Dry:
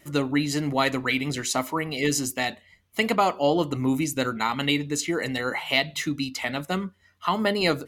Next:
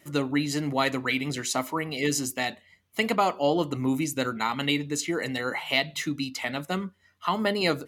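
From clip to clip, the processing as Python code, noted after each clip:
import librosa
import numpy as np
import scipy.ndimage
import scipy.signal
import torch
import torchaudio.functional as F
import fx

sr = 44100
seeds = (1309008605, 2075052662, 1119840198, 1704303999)

y = scipy.signal.sosfilt(scipy.signal.butter(2, 84.0, 'highpass', fs=sr, output='sos'), x)
y = F.gain(torch.from_numpy(y), -2.0).numpy()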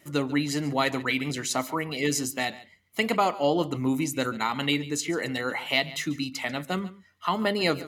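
y = x + 10.0 ** (-18.0 / 20.0) * np.pad(x, (int(141 * sr / 1000.0), 0))[:len(x)]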